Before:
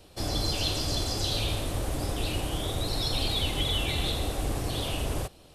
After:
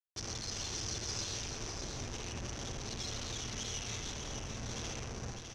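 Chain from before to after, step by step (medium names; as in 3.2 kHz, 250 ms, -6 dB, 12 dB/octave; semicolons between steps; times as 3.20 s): Doppler pass-by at 1.95 s, 8 m/s, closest 4.8 m; high-order bell 890 Hz -8.5 dB; hum notches 50/100/150/200/250/300/350 Hz; compression 20:1, threshold -43 dBFS, peak gain reduction 17.5 dB; comb of notches 310 Hz; Schmitt trigger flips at -53.5 dBFS; resonant low-pass 6 kHz, resonance Q 8.4; delay 604 ms -6 dB; reverberation, pre-delay 52 ms, DRR 2 dB; trim +4 dB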